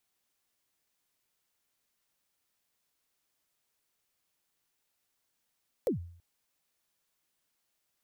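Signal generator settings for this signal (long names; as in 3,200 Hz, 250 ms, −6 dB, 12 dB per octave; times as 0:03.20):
synth kick length 0.33 s, from 570 Hz, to 86 Hz, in 118 ms, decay 0.57 s, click on, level −23 dB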